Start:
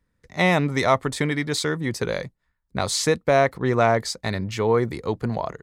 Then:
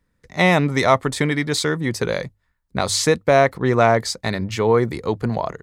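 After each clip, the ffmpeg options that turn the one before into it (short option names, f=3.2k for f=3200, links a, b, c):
-af "bandreject=f=50:t=h:w=6,bandreject=f=100:t=h:w=6,volume=3.5dB"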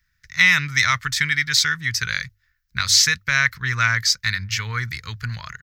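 -af "firequalizer=gain_entry='entry(110,0);entry(210,-17);entry(340,-27);entry(730,-27);entry(1000,-11);entry(1500,8);entry(3500,5);entry(5600,12);entry(9000,-5);entry(14000,11)':delay=0.05:min_phase=1,volume=-1dB"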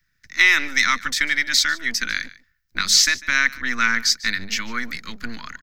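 -filter_complex "[0:a]acrossover=split=510|1400[a][b][c];[a]aeval=exprs='abs(val(0))':c=same[d];[d][b][c]amix=inputs=3:normalize=0,aecho=1:1:147:0.1"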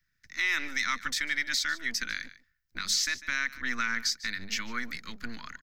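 -af "alimiter=limit=-10dB:level=0:latency=1:release=127,volume=-7.5dB"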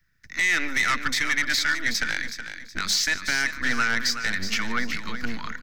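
-filter_complex "[0:a]asplit=2[a][b];[b]adynamicsmooth=sensitivity=2.5:basefreq=2.5k,volume=-2dB[c];[a][c]amix=inputs=2:normalize=0,aeval=exprs='0.237*sin(PI/2*1.78*val(0)/0.237)':c=same,aecho=1:1:371|742|1113:0.335|0.104|0.0322,volume=-4dB"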